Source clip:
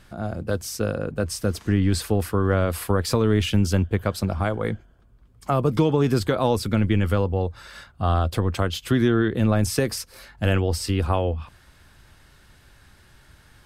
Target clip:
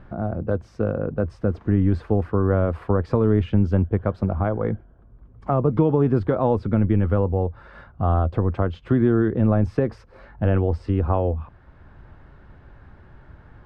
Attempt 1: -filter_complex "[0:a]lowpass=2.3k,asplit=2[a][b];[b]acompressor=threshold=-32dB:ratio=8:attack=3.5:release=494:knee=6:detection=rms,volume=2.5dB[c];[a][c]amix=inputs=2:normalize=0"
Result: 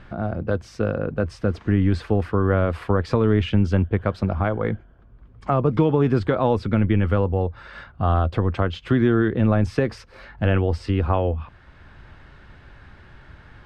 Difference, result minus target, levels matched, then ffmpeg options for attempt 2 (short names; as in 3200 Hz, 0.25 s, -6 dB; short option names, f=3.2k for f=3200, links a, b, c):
2000 Hz band +6.5 dB
-filter_complex "[0:a]lowpass=1.1k,asplit=2[a][b];[b]acompressor=threshold=-32dB:ratio=8:attack=3.5:release=494:knee=6:detection=rms,volume=2.5dB[c];[a][c]amix=inputs=2:normalize=0"